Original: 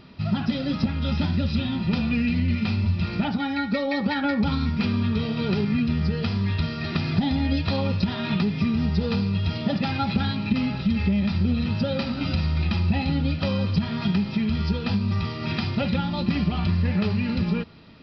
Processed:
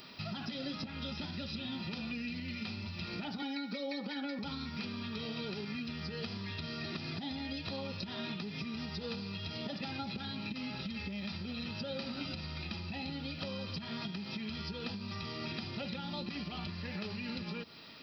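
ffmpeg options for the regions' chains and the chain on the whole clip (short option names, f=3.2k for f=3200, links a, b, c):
-filter_complex "[0:a]asettb=1/sr,asplit=3[a][b][c];[a]atrim=end=3.424[d];[b]atrim=start=3.42:end=4.39,asetpts=PTS-STARTPTS,afade=t=in:d=0.004:c=qsin,afade=t=out:st=0.966:d=0.004:c=qsin,highpass=f=190:w=0.5412,highpass=f=190:w=1.3066,aecho=1:1:4:0.64,atrim=end_sample=42777[e];[c]atrim=start=4.386[f];[d][e]acrossfade=d=0.004:c1=hsin:c2=qsin[g];[g][f]acrossfade=d=0.004:c1=qsin:c2=hsin,acompressor=threshold=-24dB:ratio=6,aemphasis=mode=production:type=riaa,acrossover=split=560|4500[h][i][j];[h]acompressor=threshold=-37dB:ratio=4[k];[i]acompressor=threshold=-44dB:ratio=4[l];[j]acompressor=threshold=-53dB:ratio=4[m];[k][l][m]amix=inputs=3:normalize=0,volume=-1.5dB"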